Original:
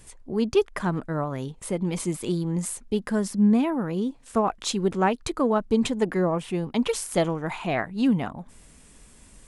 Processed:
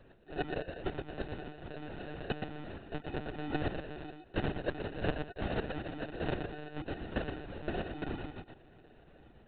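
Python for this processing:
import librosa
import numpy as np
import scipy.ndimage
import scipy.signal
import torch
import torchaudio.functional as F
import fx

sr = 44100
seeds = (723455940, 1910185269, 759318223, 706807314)

y = fx.pitch_ramps(x, sr, semitones=9.0, every_ms=210)
y = scipy.signal.sosfilt(scipy.signal.butter(2, 76.0, 'highpass', fs=sr, output='sos'), y)
y = fx.low_shelf(y, sr, hz=420.0, db=-11.0)
y = fx.notch(y, sr, hz=540.0, q=15.0)
y = fx.level_steps(y, sr, step_db=15)
y = fx.sample_hold(y, sr, seeds[0], rate_hz=1100.0, jitter_pct=0)
y = fx.cheby_harmonics(y, sr, harmonics=(3, 6, 7), levels_db=(-18, -31, -14), full_scale_db=-16.0)
y = y + 10.0 ** (-5.5 / 20.0) * np.pad(y, (int(120 * sr / 1000.0), 0))[:len(y)]
y = fx.lpc_monotone(y, sr, seeds[1], pitch_hz=150.0, order=16)
y = F.gain(torch.from_numpy(y), 3.5).numpy()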